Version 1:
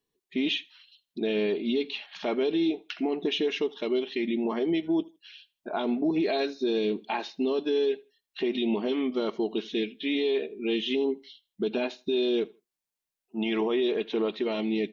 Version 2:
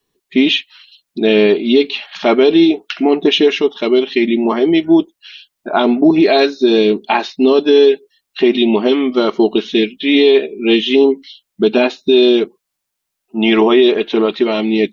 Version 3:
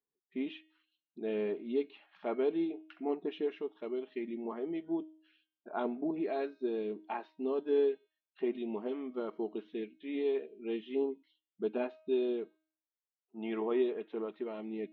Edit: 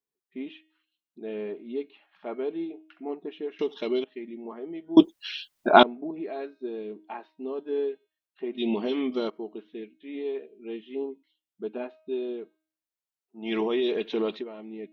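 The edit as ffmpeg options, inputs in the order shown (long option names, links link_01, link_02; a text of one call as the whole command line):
ffmpeg -i take0.wav -i take1.wav -i take2.wav -filter_complex "[0:a]asplit=3[link_01][link_02][link_03];[2:a]asplit=5[link_04][link_05][link_06][link_07][link_08];[link_04]atrim=end=3.592[link_09];[link_01]atrim=start=3.588:end=4.042[link_10];[link_05]atrim=start=4.038:end=4.972[link_11];[1:a]atrim=start=4.968:end=5.832[link_12];[link_06]atrim=start=5.828:end=8.61[link_13];[link_02]atrim=start=8.57:end=9.31[link_14];[link_07]atrim=start=9.27:end=13.52[link_15];[link_03]atrim=start=13.42:end=14.45[link_16];[link_08]atrim=start=14.35[link_17];[link_09][link_10]acrossfade=duration=0.004:curve1=hsin:curve2=hsin[link_18];[link_18][link_11]acrossfade=duration=0.004:curve1=hsin:curve2=hsin[link_19];[link_19][link_12]acrossfade=duration=0.004:curve1=hsin:curve2=hsin[link_20];[link_20][link_13]acrossfade=duration=0.004:curve1=hsin:curve2=hsin[link_21];[link_21][link_14]acrossfade=duration=0.04:curve1=tri:curve2=tri[link_22];[link_22][link_15]acrossfade=duration=0.04:curve1=tri:curve2=tri[link_23];[link_23][link_16]acrossfade=duration=0.1:curve1=tri:curve2=tri[link_24];[link_24][link_17]acrossfade=duration=0.1:curve1=tri:curve2=tri" out.wav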